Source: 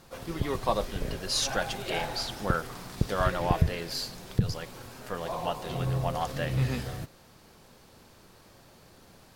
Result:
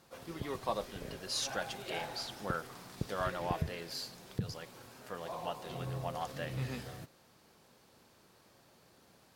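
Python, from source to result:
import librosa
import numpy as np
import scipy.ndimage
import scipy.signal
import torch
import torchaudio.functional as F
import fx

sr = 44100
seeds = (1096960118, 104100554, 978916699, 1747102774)

y = fx.highpass(x, sr, hz=140.0, slope=6)
y = y * 10.0 ** (-7.5 / 20.0)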